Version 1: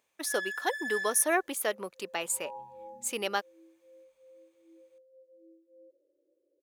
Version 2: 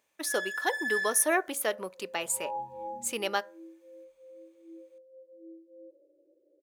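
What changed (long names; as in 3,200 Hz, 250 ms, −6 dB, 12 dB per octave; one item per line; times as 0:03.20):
second sound +5.0 dB
reverb: on, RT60 0.40 s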